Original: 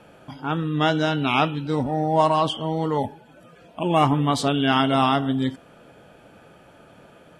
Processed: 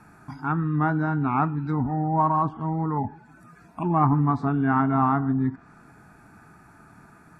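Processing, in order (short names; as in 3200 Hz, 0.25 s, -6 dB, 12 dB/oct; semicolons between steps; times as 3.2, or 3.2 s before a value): treble ducked by the level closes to 1200 Hz, closed at -19.5 dBFS; fixed phaser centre 1300 Hz, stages 4; gain +2.5 dB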